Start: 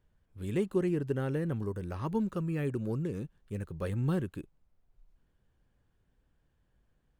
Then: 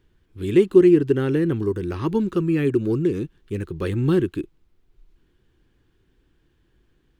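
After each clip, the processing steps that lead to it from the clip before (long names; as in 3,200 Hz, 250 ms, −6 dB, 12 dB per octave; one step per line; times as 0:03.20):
drawn EQ curve 220 Hz 0 dB, 350 Hz +11 dB, 580 Hz −6 dB, 1,100 Hz 0 dB, 3,400 Hz +6 dB, 8,600 Hz −2 dB
level +8 dB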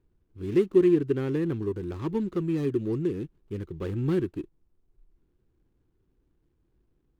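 running median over 25 samples
level −6.5 dB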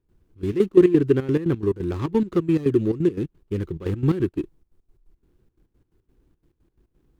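gate pattern ".xxx.x.x.x" 175 BPM −12 dB
level +8 dB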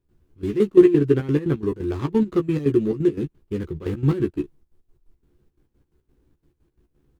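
double-tracking delay 14 ms −5 dB
level −1 dB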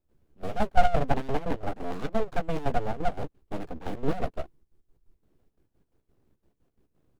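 full-wave rectification
level −4 dB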